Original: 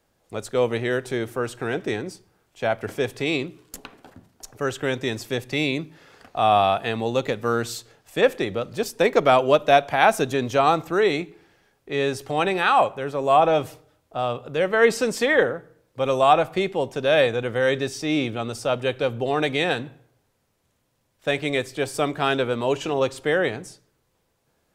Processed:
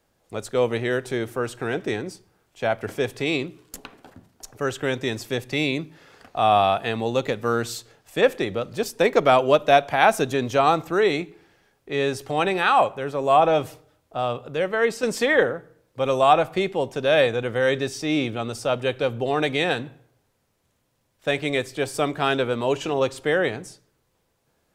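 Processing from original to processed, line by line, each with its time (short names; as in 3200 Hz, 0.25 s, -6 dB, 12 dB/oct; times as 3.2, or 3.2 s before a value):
14.38–15.03 fade out, to -7 dB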